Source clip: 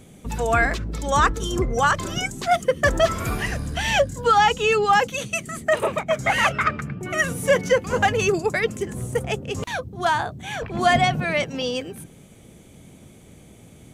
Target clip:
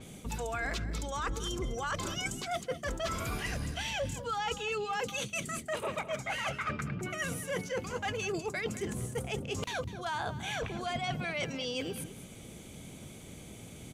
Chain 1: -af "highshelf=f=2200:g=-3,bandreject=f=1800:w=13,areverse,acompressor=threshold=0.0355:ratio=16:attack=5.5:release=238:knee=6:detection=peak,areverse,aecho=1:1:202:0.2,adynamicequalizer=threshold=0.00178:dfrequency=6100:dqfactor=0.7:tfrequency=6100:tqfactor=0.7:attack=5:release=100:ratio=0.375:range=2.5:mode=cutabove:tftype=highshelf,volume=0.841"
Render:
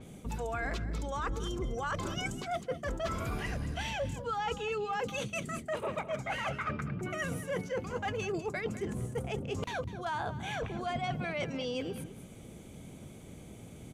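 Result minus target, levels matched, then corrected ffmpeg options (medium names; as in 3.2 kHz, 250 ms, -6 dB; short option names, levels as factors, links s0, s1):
4 kHz band -4.0 dB
-af "highshelf=f=2200:g=7.5,bandreject=f=1800:w=13,areverse,acompressor=threshold=0.0355:ratio=16:attack=5.5:release=238:knee=6:detection=peak,areverse,aecho=1:1:202:0.2,adynamicequalizer=threshold=0.00178:dfrequency=6100:dqfactor=0.7:tfrequency=6100:tqfactor=0.7:attack=5:release=100:ratio=0.375:range=2.5:mode=cutabove:tftype=highshelf,volume=0.841"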